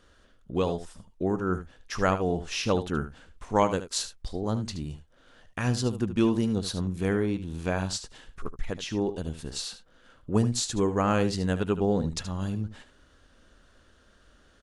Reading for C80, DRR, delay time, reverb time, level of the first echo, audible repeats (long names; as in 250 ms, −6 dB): no reverb audible, no reverb audible, 75 ms, no reverb audible, −12.0 dB, 1